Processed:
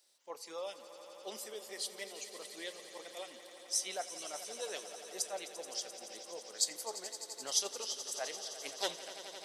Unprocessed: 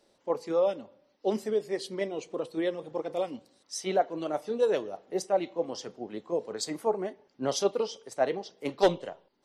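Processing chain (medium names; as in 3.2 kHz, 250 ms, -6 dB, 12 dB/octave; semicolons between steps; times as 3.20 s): differentiator; echo with a slow build-up 86 ms, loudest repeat 5, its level -15 dB; trim +5 dB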